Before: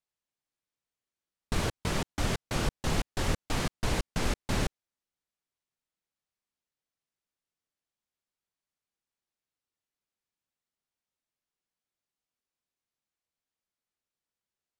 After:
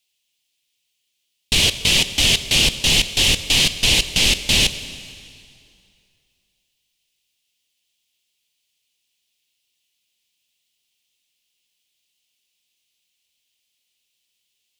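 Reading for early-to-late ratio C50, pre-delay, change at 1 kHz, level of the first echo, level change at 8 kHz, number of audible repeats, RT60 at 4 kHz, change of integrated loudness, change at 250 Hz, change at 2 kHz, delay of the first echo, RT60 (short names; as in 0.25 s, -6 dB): 12.5 dB, 4 ms, +2.0 dB, none, +20.0 dB, none, 2.3 s, +17.0 dB, +5.5 dB, +17.0 dB, none, 2.4 s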